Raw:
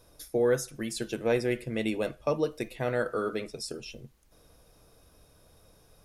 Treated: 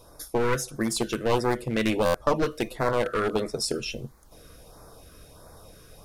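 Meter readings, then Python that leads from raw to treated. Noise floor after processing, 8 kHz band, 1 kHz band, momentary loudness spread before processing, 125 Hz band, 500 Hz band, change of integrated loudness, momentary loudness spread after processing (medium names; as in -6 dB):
-52 dBFS, +7.0 dB, +10.0 dB, 11 LU, +5.0 dB, +2.5 dB, +4.0 dB, 7 LU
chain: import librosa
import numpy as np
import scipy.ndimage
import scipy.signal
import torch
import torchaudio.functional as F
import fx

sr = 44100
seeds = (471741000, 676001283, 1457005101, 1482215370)

y = np.minimum(x, 2.0 * 10.0 ** (-27.5 / 20.0) - x)
y = fx.peak_eq(y, sr, hz=1100.0, db=7.0, octaves=1.5)
y = fx.rider(y, sr, range_db=4, speed_s=0.5)
y = fx.filter_lfo_notch(y, sr, shape='sine', hz=1.5, low_hz=790.0, high_hz=3000.0, q=1.0)
y = fx.buffer_glitch(y, sr, at_s=(2.05,), block=512, repeats=7)
y = y * librosa.db_to_amplitude(5.5)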